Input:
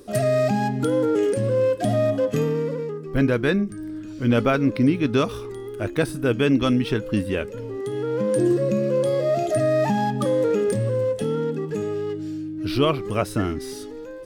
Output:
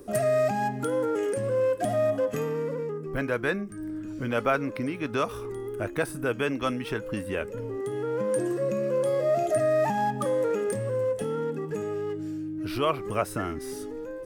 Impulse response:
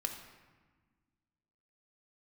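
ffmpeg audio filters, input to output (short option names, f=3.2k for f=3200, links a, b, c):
-filter_complex "[0:a]acrossover=split=550|2000[a][b][c];[a]acompressor=threshold=-32dB:ratio=5[d];[d][b][c]amix=inputs=3:normalize=0,equalizer=f=4k:t=o:w=1.3:g=-9.5"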